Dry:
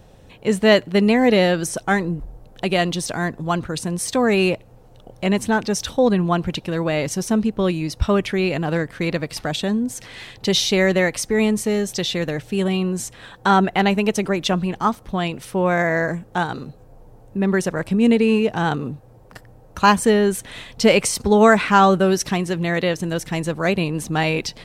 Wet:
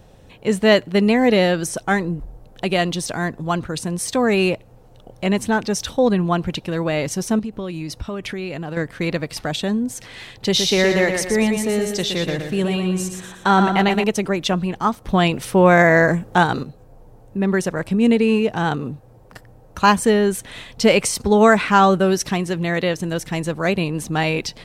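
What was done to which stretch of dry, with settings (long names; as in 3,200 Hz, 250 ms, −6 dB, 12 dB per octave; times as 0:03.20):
0:07.39–0:08.77: downward compressor, threshold −24 dBFS
0:10.31–0:14.04: repeating echo 119 ms, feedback 42%, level −6 dB
0:15.05–0:16.63: clip gain +6.5 dB
0:21.09–0:22.84: floating-point word with a short mantissa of 8 bits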